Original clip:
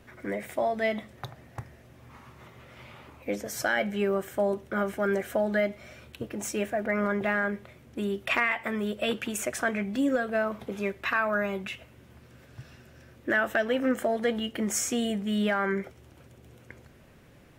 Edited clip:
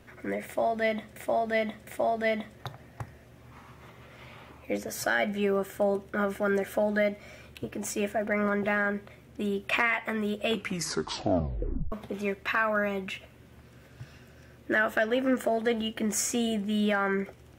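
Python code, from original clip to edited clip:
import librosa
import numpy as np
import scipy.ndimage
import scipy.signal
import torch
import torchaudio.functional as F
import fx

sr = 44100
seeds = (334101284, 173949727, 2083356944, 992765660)

y = fx.edit(x, sr, fx.repeat(start_s=0.45, length_s=0.71, count=3),
    fx.tape_stop(start_s=9.06, length_s=1.44), tone=tone)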